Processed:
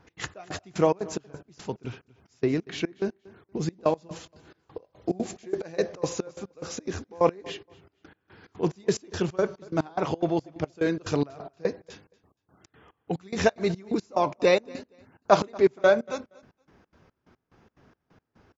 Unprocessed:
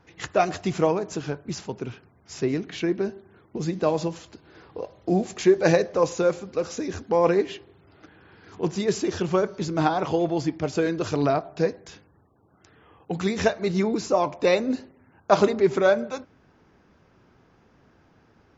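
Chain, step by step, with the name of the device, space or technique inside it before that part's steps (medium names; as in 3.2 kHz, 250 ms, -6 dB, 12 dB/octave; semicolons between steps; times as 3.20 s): trance gate with a delay (trance gate "x.xx..x..x" 179 bpm -24 dB; feedback delay 235 ms, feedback 18%, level -23 dB)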